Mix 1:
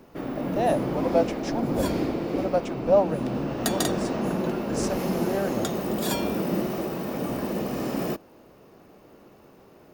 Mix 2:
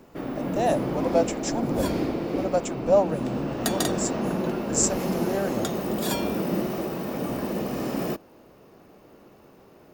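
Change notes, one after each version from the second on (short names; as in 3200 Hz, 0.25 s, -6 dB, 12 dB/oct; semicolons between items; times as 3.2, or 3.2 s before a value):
speech: add synth low-pass 7400 Hz, resonance Q 11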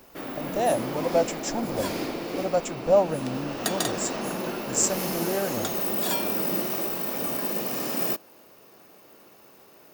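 first sound: add tilt +3 dB/oct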